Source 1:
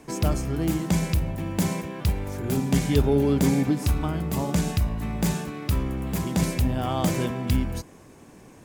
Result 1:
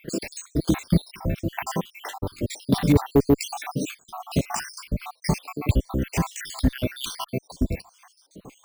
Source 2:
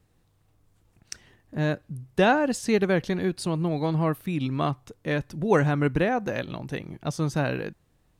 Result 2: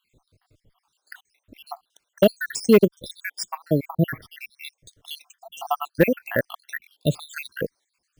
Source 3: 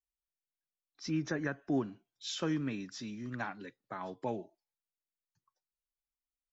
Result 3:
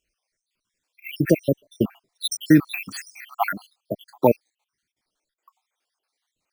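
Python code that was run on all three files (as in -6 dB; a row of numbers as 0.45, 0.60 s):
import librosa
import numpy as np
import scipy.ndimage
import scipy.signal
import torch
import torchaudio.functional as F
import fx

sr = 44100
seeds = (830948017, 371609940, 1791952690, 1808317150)

y = fx.spec_dropout(x, sr, seeds[0], share_pct=83)
y = fx.low_shelf(y, sr, hz=240.0, db=-4.0)
y = np.repeat(y[::3], 3)[:len(y)]
y = fx.clip_asym(y, sr, top_db=-19.5, bottom_db=-16.5)
y = y * 10.0 ** (-26 / 20.0) / np.sqrt(np.mean(np.square(y)))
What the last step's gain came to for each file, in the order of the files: +9.5, +11.0, +22.5 dB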